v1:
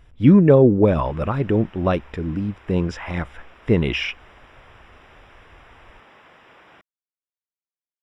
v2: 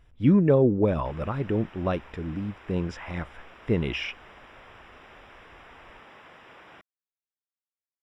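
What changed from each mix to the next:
speech -7.0 dB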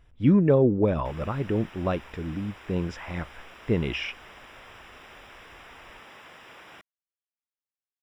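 background: remove LPF 2100 Hz 6 dB/oct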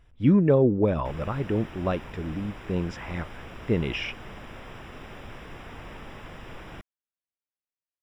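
background: remove HPF 1000 Hz 6 dB/oct

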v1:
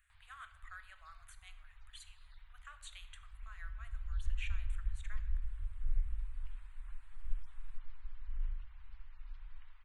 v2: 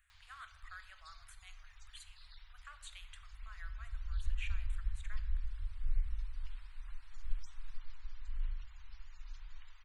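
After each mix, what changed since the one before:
background: remove air absorption 390 m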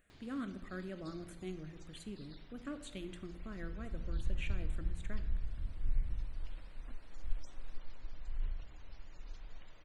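master: remove inverse Chebyshev band-stop 170–430 Hz, stop band 60 dB

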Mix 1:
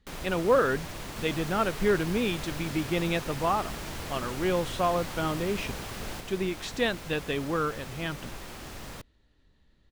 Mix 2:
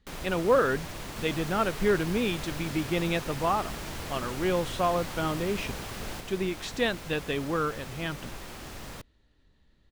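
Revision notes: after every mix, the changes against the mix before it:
none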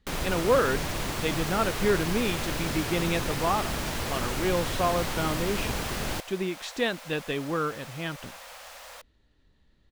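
first sound +8.0 dB; second sound: add brick-wall FIR high-pass 470 Hz

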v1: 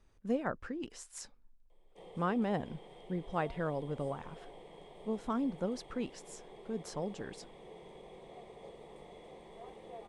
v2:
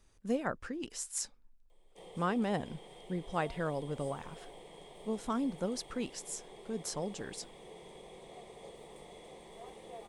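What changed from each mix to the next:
master: remove LPF 2300 Hz 6 dB/oct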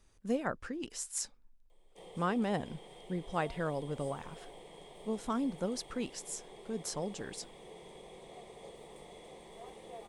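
none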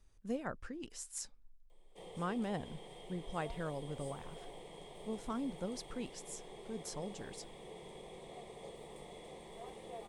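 speech -6.5 dB; master: add low shelf 89 Hz +9.5 dB

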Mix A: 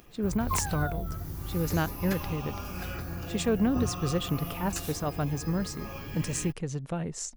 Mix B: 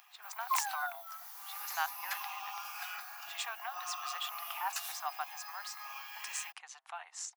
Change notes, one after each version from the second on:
speech: add high shelf 5500 Hz -8 dB; master: add Chebyshev high-pass 750 Hz, order 6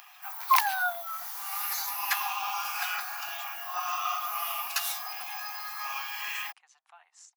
speech -11.0 dB; background +10.5 dB

